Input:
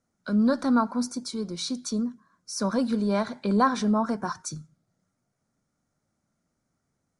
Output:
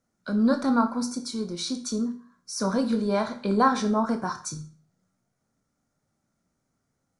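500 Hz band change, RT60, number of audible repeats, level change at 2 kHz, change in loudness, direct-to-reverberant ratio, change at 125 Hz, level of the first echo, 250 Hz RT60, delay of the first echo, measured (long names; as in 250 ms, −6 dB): +1.5 dB, 0.40 s, no echo audible, +1.0 dB, +0.5 dB, 6.0 dB, −1.0 dB, no echo audible, 0.40 s, no echo audible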